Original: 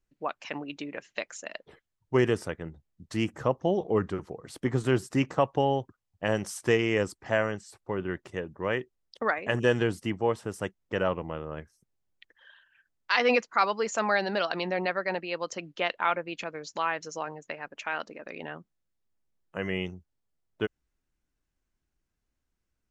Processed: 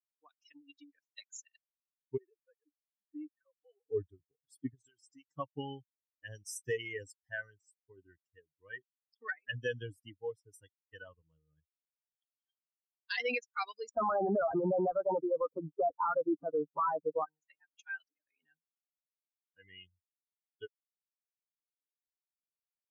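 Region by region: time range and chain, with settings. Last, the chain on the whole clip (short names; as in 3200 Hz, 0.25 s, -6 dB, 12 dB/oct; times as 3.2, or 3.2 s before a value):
2.17–3.86 sine-wave speech + compressor 12:1, threshold -32 dBFS + comb 6 ms, depth 57%
4.74–5.28 low shelf 400 Hz -12 dB + compressor 10:1, threshold -31 dBFS + LPF 8300 Hz
13.89–17.25 sample leveller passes 5 + elliptic low-pass 1300 Hz, stop band 50 dB
whole clip: per-bin expansion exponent 3; HPF 210 Hz 6 dB/oct; limiter -24.5 dBFS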